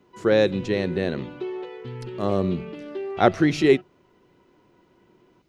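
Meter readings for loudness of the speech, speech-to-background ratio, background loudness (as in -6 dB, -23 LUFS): -23.0 LUFS, 13.0 dB, -36.0 LUFS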